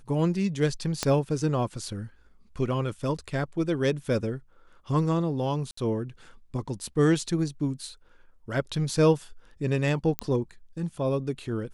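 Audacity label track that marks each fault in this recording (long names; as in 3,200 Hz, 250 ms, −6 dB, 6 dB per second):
1.030000	1.030000	click −11 dBFS
5.710000	5.770000	drop-out 64 ms
10.190000	10.190000	click −11 dBFS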